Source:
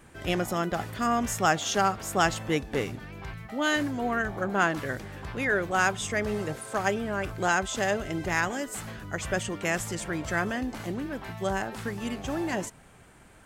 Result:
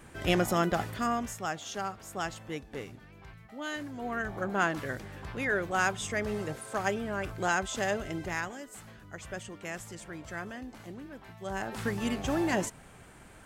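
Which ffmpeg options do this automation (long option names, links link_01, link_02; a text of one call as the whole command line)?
ffmpeg -i in.wav -af "volume=21.5dB,afade=type=out:start_time=0.66:duration=0.71:silence=0.237137,afade=type=in:start_time=3.86:duration=0.51:silence=0.421697,afade=type=out:start_time=8.07:duration=0.5:silence=0.421697,afade=type=in:start_time=11.44:duration=0.44:silence=0.237137" out.wav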